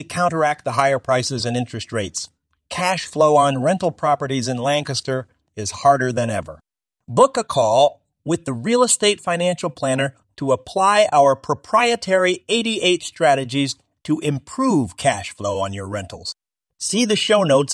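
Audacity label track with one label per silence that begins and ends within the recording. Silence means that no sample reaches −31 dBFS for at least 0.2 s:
2.250000	2.710000	silence
5.220000	5.570000	silence
6.540000	7.090000	silence
7.920000	8.260000	silence
10.090000	10.380000	silence
13.720000	14.050000	silence
16.320000	16.810000	silence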